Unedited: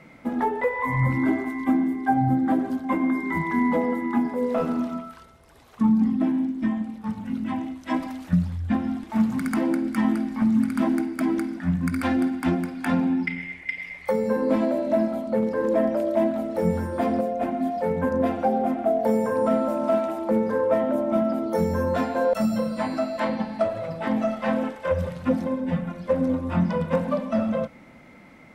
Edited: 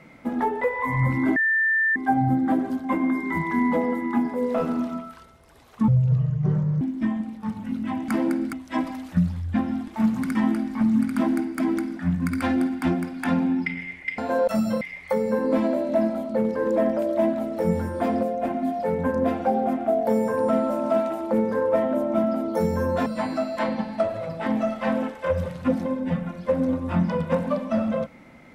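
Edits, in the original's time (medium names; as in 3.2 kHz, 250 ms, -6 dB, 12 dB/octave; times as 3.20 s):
1.36–1.96 s: bleep 1.78 kHz -18 dBFS
5.88–6.42 s: speed 58%
9.51–9.96 s: move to 7.69 s
22.04–22.67 s: move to 13.79 s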